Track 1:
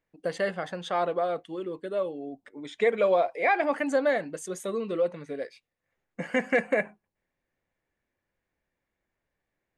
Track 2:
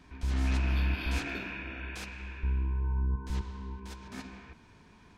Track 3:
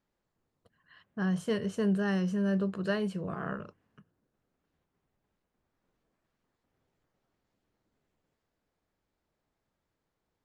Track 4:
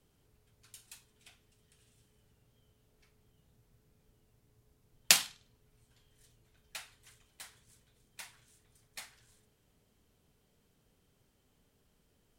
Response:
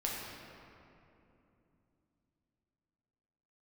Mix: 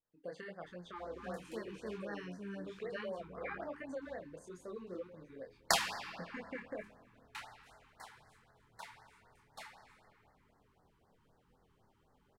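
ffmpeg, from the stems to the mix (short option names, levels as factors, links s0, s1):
-filter_complex "[0:a]acompressor=threshold=0.0562:ratio=6,volume=0.282,asplit=2[s0][s1];[s1]volume=0.0841[s2];[1:a]highpass=f=420:p=1,adelay=750,volume=0.168[s3];[2:a]highpass=f=740:p=1,adelay=50,volume=0.631[s4];[3:a]equalizer=f=920:w=0.8:g=12.5,adelay=600,volume=0.668,asplit=2[s5][s6];[s6]volume=0.596[s7];[4:a]atrim=start_sample=2205[s8];[s2][s7]amix=inputs=2:normalize=0[s9];[s9][s8]afir=irnorm=-1:irlink=0[s10];[s0][s3][s4][s5][s10]amix=inputs=5:normalize=0,highshelf=f=4700:g=-11,flanger=delay=22.5:depth=5.4:speed=1.3,afftfilt=real='re*(1-between(b*sr/1024,550*pow(3000/550,0.5+0.5*sin(2*PI*3.9*pts/sr))/1.41,550*pow(3000/550,0.5+0.5*sin(2*PI*3.9*pts/sr))*1.41))':imag='im*(1-between(b*sr/1024,550*pow(3000/550,0.5+0.5*sin(2*PI*3.9*pts/sr))/1.41,550*pow(3000/550,0.5+0.5*sin(2*PI*3.9*pts/sr))*1.41))':win_size=1024:overlap=0.75"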